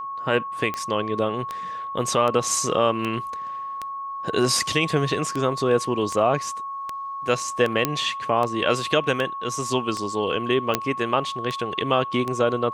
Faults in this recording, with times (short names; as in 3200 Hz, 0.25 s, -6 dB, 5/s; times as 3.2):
tick 78 rpm -14 dBFS
tone 1100 Hz -29 dBFS
7.85 pop -5 dBFS
10.75 pop -3 dBFS